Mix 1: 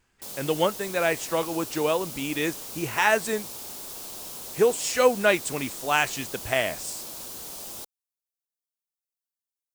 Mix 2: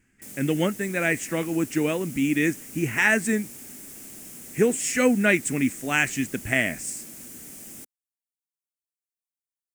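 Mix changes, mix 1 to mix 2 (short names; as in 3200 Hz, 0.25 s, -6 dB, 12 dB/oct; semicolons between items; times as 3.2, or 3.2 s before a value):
background -5.0 dB; master: add graphic EQ 125/250/500/1000/2000/4000/8000 Hz +4/+12/-4/-11/+11/-12/+6 dB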